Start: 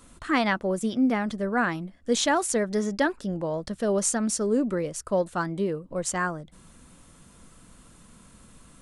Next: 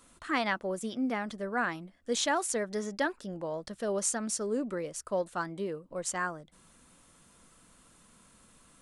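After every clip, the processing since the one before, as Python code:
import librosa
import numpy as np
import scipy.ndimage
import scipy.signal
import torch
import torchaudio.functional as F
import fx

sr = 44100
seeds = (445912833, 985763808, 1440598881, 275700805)

y = fx.low_shelf(x, sr, hz=260.0, db=-9.0)
y = F.gain(torch.from_numpy(y), -4.5).numpy()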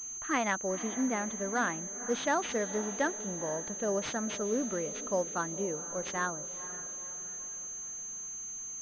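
y = fx.echo_diffused(x, sr, ms=489, feedback_pct=49, wet_db=-14.0)
y = fx.pwm(y, sr, carrier_hz=6300.0)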